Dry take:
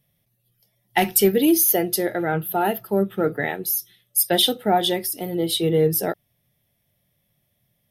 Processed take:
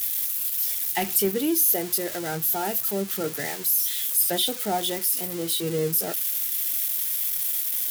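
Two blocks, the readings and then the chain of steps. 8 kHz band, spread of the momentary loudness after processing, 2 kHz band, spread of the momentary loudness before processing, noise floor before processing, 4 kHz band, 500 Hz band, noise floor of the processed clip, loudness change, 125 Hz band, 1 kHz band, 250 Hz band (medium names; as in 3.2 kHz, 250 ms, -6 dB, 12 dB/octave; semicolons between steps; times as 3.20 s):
+1.5 dB, 6 LU, -6.0 dB, 9 LU, -71 dBFS, -4.5 dB, -7.5 dB, -33 dBFS, -2.0 dB, -7.5 dB, -7.5 dB, -7.5 dB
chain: zero-crossing glitches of -13.5 dBFS; trim -7.5 dB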